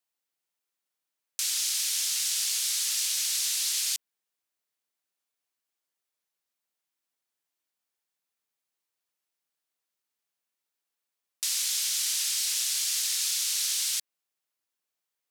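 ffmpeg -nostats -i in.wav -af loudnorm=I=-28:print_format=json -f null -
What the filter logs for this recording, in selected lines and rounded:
"input_i" : "-25.9",
"input_tp" : "-14.6",
"input_lra" : "4.3",
"input_thresh" : "-36.0",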